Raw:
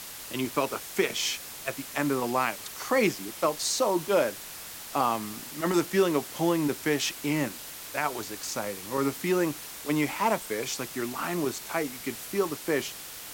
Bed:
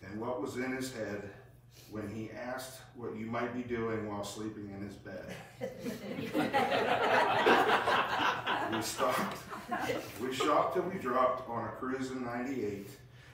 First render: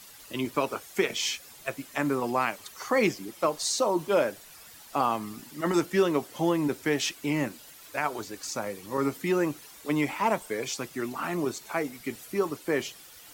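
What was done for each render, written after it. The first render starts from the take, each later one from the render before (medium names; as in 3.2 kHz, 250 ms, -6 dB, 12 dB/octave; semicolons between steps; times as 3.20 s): noise reduction 11 dB, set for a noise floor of -42 dBFS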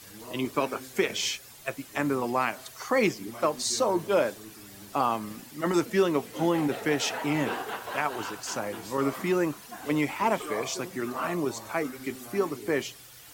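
add bed -7.5 dB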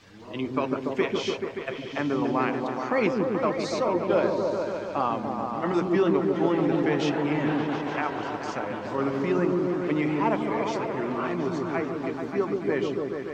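distance through air 180 m; delay with an opening low-pass 144 ms, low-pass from 400 Hz, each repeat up 1 oct, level 0 dB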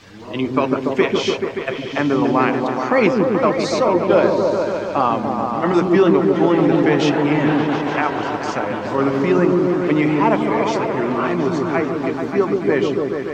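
trim +9 dB; peak limiter -3 dBFS, peak gain reduction 2 dB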